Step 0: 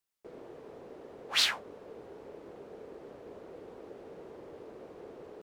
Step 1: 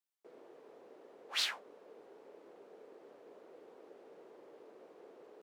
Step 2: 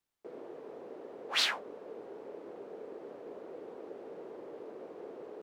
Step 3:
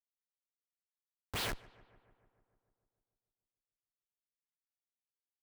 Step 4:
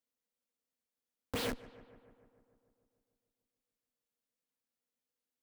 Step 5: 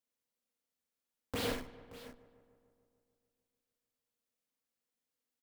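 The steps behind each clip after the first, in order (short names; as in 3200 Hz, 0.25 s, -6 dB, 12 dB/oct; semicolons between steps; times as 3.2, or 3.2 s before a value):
HPF 310 Hz 12 dB/oct; gain -7.5 dB
tilt -2 dB/oct; gain +8.5 dB
Schmitt trigger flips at -30.5 dBFS; darkening echo 0.148 s, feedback 69%, low-pass 2700 Hz, level -21 dB; gain +5.5 dB
compressor, threshold -41 dBFS, peak gain reduction 5.5 dB; small resonant body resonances 250/480 Hz, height 15 dB, ringing for 60 ms; gain +2 dB
tapped delay 46/93/149/577/609 ms -4.5/-6.5/-19.5/-17/-19 dB; gain -1.5 dB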